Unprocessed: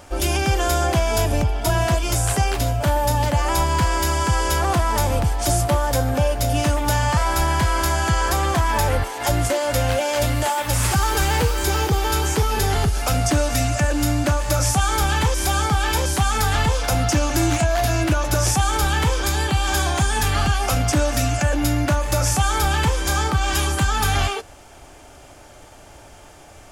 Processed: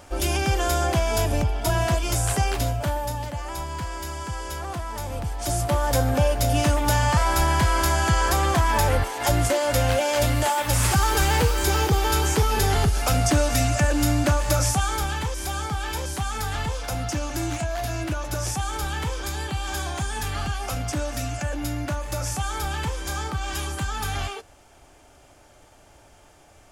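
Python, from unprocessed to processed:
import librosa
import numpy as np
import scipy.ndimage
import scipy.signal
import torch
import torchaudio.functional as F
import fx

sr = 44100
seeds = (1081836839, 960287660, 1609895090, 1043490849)

y = fx.gain(x, sr, db=fx.line((2.65, -3.0), (3.31, -12.0), (5.01, -12.0), (5.95, -1.0), (14.51, -1.0), (15.23, -8.5)))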